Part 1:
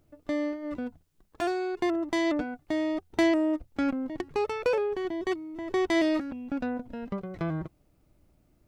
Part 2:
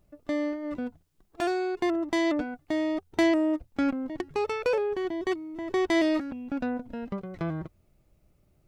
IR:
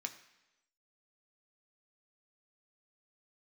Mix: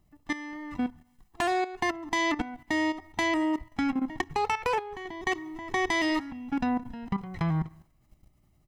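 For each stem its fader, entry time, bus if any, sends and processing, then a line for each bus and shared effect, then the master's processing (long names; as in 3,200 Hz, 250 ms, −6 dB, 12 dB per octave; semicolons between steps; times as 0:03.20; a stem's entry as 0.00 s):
−3.0 dB, 0.00 s, send −5.5 dB, no processing
+2.5 dB, 1.2 ms, send −3.5 dB, comb filter 1 ms, depth 90%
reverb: on, RT60 1.0 s, pre-delay 3 ms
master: output level in coarse steps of 13 dB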